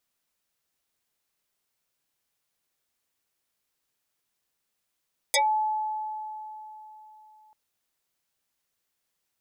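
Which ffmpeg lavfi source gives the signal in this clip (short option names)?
-f lavfi -i "aevalsrc='0.119*pow(10,-3*t/3.61)*sin(2*PI*861*t+9.4*pow(10,-3*t/0.14)*sin(2*PI*1.65*861*t))':d=2.19:s=44100"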